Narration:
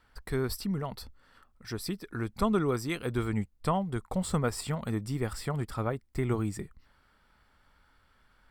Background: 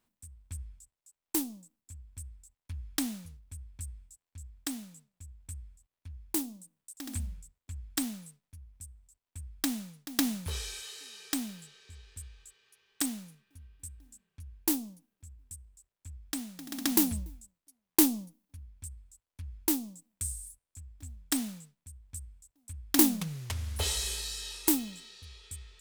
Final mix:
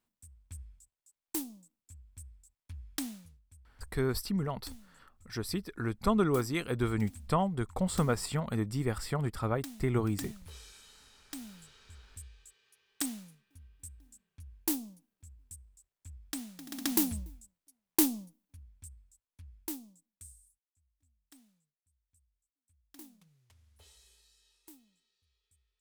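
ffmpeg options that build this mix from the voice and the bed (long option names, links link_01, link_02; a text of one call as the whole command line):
ffmpeg -i stem1.wav -i stem2.wav -filter_complex "[0:a]adelay=3650,volume=0dB[link_01];[1:a]volume=5.5dB,afade=type=out:start_time=3.05:duration=0.48:silence=0.375837,afade=type=in:start_time=11.29:duration=0.44:silence=0.298538,afade=type=out:start_time=17.95:duration=2.79:silence=0.0473151[link_02];[link_01][link_02]amix=inputs=2:normalize=0" out.wav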